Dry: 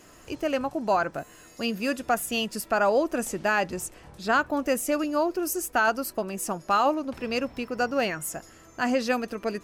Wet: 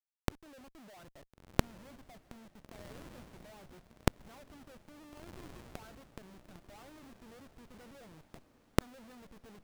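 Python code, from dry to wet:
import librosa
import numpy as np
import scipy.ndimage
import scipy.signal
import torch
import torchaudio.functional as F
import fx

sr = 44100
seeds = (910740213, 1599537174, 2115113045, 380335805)

p1 = fx.wiener(x, sr, points=41)
p2 = fx.env_lowpass(p1, sr, base_hz=670.0, full_db=-21.0)
p3 = fx.peak_eq(p2, sr, hz=1500.0, db=-14.0, octaves=2.0)
p4 = fx.filter_lfo_lowpass(p3, sr, shape='sine', hz=3.1, low_hz=560.0, high_hz=1600.0, q=5.5)
p5 = fx.schmitt(p4, sr, flips_db=-39.0)
p6 = fx.gate_flip(p5, sr, shuts_db=-44.0, range_db=-42)
p7 = p6 + fx.echo_diffused(p6, sr, ms=1427, feedback_pct=42, wet_db=-14, dry=0)
y = F.gain(torch.from_numpy(p7), 15.5).numpy()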